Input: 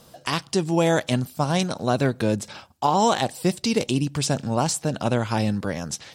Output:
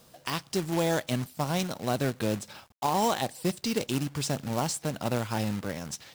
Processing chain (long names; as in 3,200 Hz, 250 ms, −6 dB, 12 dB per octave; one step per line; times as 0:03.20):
log-companded quantiser 4 bits
level −7 dB